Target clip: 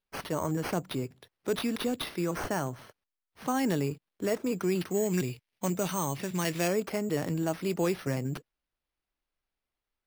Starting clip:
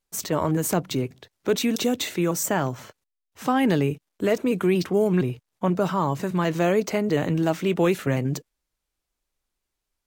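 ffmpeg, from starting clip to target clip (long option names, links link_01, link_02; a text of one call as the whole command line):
ffmpeg -i in.wav -filter_complex "[0:a]acrusher=samples=6:mix=1:aa=0.000001,asettb=1/sr,asplit=3[link_01][link_02][link_03];[link_01]atrim=end=4.904[link_04];[link_02]atrim=start=4.9:end=6.68,asetpts=PTS-STARTPTS,afade=type=in:duration=0.004:curve=qsin,afade=type=out:start_time=1.776:duration=0.004:curve=qsin,highshelf=frequency=1700:width_type=q:width=1.5:gain=6.5[link_05];[link_03]atrim=start=6.676[link_06];[link_04][link_05]acrossfade=duration=0.004:curve1=hsin:curve2=qsin[link_07];[link_07][link_06]acrossfade=duration=0.004:curve1=qsin:curve2=hsin,volume=-7.5dB" out.wav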